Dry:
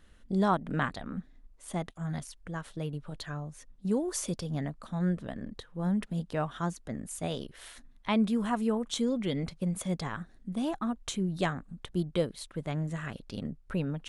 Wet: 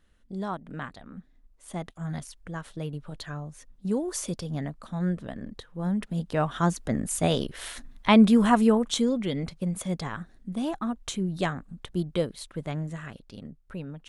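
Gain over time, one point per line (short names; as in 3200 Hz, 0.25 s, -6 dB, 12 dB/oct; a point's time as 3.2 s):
1.08 s -6.5 dB
2.04 s +1.5 dB
5.99 s +1.5 dB
6.81 s +10 dB
8.57 s +10 dB
9.3 s +2 dB
12.66 s +2 dB
13.4 s -5.5 dB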